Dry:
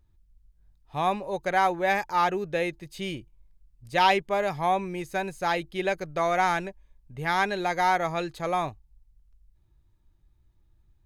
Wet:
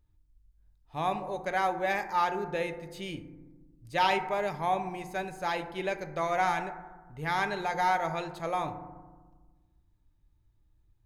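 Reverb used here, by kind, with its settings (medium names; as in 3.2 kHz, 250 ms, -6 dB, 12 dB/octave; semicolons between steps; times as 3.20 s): FDN reverb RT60 1.3 s, low-frequency decay 1.45×, high-frequency decay 0.3×, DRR 7.5 dB; trim -5 dB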